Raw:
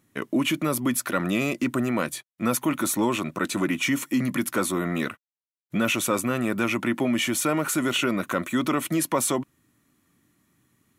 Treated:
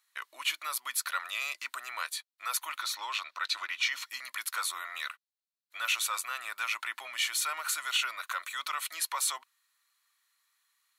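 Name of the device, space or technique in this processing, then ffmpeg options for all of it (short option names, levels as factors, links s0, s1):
headphones lying on a table: -filter_complex "[0:a]asettb=1/sr,asplit=3[s0][s1][s2];[s0]atrim=end=2.784[s3];[s1]atrim=start=2.78:end=4.1,asetpts=PTS-STARTPTS,afade=t=in:d=0.004:c=qsin,afade=t=out:st=1.316:d=0.004:c=qsin,highshelf=f=6500:t=q:w=1.5:g=-8[s4];[s2]atrim=start=4.096[s5];[s3][s4]acrossfade=d=0.004:c1=hsin:c2=qsin[s6];[s6][s5]acrossfade=d=0.004:c1=qsin:c2=hsin,highpass=f=1000:w=0.5412,highpass=f=1000:w=1.3066,equalizer=f=4200:t=o:w=0.38:g=10,volume=0.596"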